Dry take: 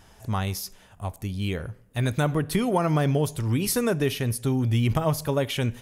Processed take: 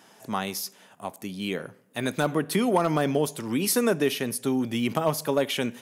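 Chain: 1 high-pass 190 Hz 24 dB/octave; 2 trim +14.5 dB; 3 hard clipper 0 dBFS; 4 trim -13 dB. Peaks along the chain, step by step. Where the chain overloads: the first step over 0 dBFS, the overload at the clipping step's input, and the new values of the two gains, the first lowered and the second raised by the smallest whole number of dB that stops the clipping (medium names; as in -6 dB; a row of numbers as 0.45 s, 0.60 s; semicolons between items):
-10.5 dBFS, +4.0 dBFS, 0.0 dBFS, -13.0 dBFS; step 2, 4.0 dB; step 2 +10.5 dB, step 4 -9 dB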